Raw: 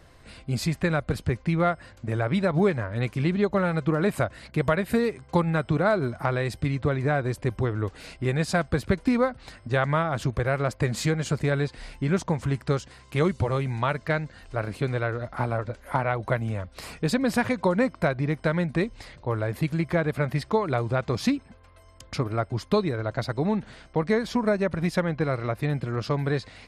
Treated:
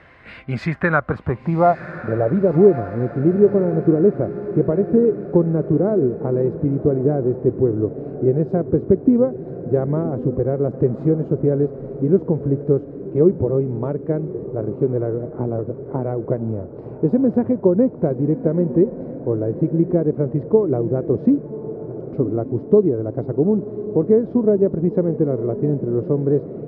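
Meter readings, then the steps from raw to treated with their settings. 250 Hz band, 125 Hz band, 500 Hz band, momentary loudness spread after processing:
+8.5 dB, +4.0 dB, +9.5 dB, 9 LU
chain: high-pass filter 130 Hz 6 dB per octave
high-shelf EQ 5,400 Hz +4.5 dB
low-pass filter sweep 2,100 Hz → 390 Hz, 0:00.41–0:02.63
on a send: feedback delay with all-pass diffusion 1,102 ms, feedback 50%, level −12.5 dB
on the sum: level +5.5 dB

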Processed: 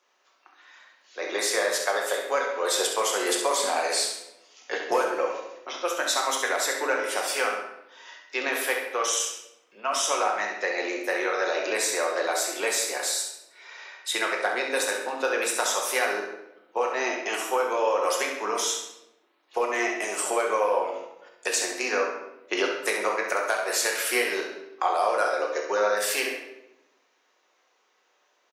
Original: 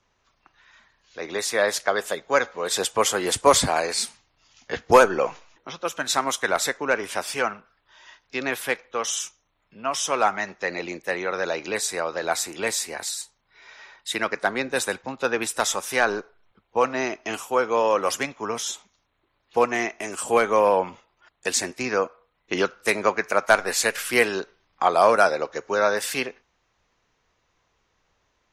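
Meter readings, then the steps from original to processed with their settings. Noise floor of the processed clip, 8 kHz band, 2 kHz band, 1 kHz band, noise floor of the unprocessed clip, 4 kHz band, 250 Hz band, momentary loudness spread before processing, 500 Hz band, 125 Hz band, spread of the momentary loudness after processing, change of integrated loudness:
−68 dBFS, 0.0 dB, −1.5 dB, −3.5 dB, −71 dBFS, 0.0 dB, −5.5 dB, 12 LU, −3.5 dB, below −20 dB, 11 LU, −2.5 dB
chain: high-pass filter 350 Hz 24 dB per octave
high-shelf EQ 10,000 Hz +4 dB
downward compressor 5 to 1, threshold −24 dBFS, peak gain reduction 13.5 dB
repeating echo 67 ms, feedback 39%, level −7.5 dB
rectangular room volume 290 cubic metres, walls mixed, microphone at 0.96 metres

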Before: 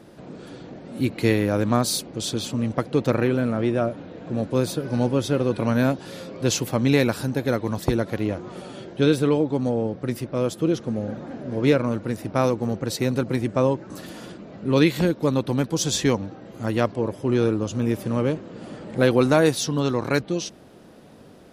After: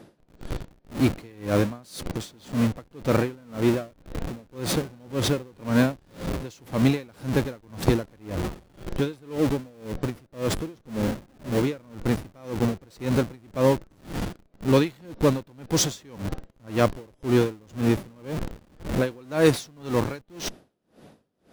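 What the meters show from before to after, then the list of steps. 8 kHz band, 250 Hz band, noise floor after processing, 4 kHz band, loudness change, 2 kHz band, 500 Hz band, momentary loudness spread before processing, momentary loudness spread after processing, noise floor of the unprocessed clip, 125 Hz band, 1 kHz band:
−3.0 dB, −3.0 dB, −62 dBFS, −3.5 dB, −3.5 dB, −3.5 dB, −4.0 dB, 15 LU, 13 LU, −47 dBFS, −2.5 dB, −3.5 dB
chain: in parallel at −3.5 dB: comparator with hysteresis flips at −33 dBFS
on the sum: tremolo with a sine in dB 1.9 Hz, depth 31 dB

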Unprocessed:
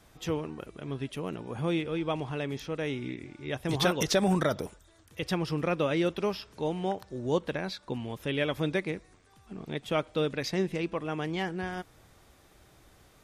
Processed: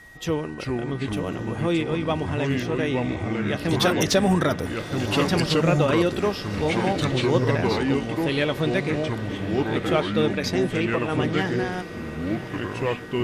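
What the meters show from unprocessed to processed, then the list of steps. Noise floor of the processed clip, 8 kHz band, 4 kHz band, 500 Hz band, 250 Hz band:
−35 dBFS, +6.5 dB, +7.5 dB, +7.5 dB, +9.0 dB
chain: flanger 0.45 Hz, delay 0.7 ms, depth 4.2 ms, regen −85%
in parallel at −8 dB: hard clipping −27.5 dBFS, distortion −15 dB
on the sum: feedback delay with all-pass diffusion 1,149 ms, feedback 44%, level −13 dB
steady tone 1,900 Hz −53 dBFS
delay with pitch and tempo change per echo 326 ms, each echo −4 semitones, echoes 2
level +7.5 dB

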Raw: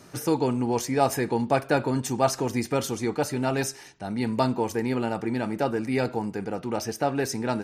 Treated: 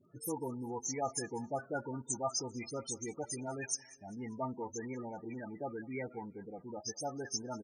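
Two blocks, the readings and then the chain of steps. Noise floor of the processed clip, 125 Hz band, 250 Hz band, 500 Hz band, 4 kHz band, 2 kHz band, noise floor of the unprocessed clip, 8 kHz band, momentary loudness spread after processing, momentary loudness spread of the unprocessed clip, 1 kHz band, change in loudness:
−59 dBFS, −16.0 dB, −15.5 dB, −14.5 dB, −9.5 dB, −14.5 dB, −47 dBFS, −3.5 dB, 8 LU, 6 LU, −14.0 dB, −13.5 dB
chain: spectral peaks only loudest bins 16
first-order pre-emphasis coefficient 0.9
all-pass dispersion highs, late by 53 ms, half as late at 1,400 Hz
on a send: repeating echo 196 ms, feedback 45%, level −22.5 dB
on the sum: level +4 dB

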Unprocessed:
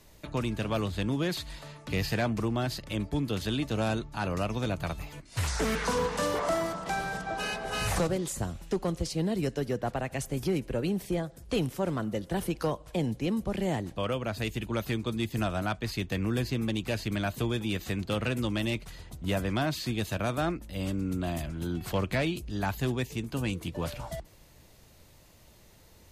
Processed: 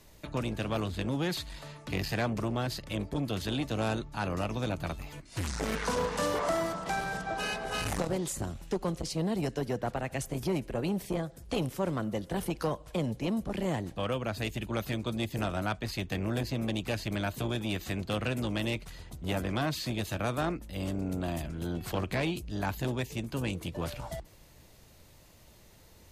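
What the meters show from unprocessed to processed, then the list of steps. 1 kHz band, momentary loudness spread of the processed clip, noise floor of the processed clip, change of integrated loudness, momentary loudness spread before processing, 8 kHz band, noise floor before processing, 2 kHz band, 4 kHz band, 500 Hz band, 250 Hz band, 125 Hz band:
−1.0 dB, 5 LU, −56 dBFS, −2.0 dB, 5 LU, −1.5 dB, −56 dBFS, −1.5 dB, −1.5 dB, −2.0 dB, −2.0 dB, −2.0 dB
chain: saturating transformer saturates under 410 Hz

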